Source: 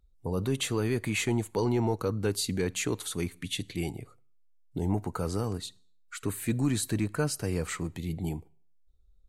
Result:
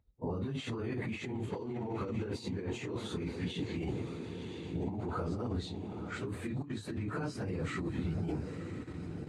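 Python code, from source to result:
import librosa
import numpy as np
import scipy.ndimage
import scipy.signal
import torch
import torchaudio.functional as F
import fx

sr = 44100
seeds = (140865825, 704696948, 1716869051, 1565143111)

p1 = fx.phase_scramble(x, sr, seeds[0], window_ms=100)
p2 = scipy.signal.sosfilt(scipy.signal.butter(4, 45.0, 'highpass', fs=sr, output='sos'), p1)
p3 = fx.echo_diffused(p2, sr, ms=991, feedback_pct=44, wet_db=-14)
p4 = fx.level_steps(p3, sr, step_db=24)
p5 = p3 + F.gain(torch.from_numpy(p4), 2.0).numpy()
p6 = fx.hpss(p5, sr, part='percussive', gain_db=6)
p7 = fx.over_compress(p6, sr, threshold_db=-29.0, ratio=-1.0)
p8 = fx.spacing_loss(p7, sr, db_at_10k=25)
y = F.gain(torch.from_numpy(p8), -6.0).numpy()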